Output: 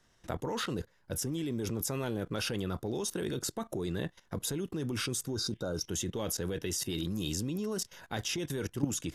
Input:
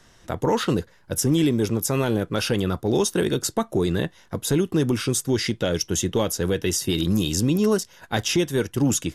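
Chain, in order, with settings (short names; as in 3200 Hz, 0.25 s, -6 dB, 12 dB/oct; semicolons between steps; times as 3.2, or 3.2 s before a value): spectral repair 5.32–5.81, 1600–3600 Hz; level quantiser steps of 17 dB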